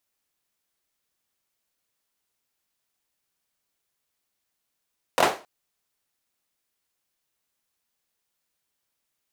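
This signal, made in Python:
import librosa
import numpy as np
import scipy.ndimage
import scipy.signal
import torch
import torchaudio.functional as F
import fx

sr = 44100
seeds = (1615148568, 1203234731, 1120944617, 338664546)

y = fx.drum_clap(sr, seeds[0], length_s=0.27, bursts=3, spacing_ms=23, hz=600.0, decay_s=0.32)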